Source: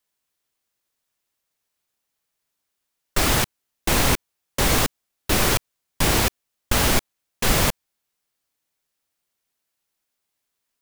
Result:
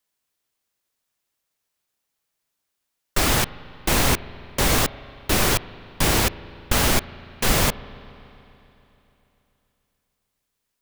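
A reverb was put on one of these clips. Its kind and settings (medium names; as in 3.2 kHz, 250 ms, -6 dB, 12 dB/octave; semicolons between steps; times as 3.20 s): spring tank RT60 3.3 s, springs 36/48 ms, chirp 25 ms, DRR 17 dB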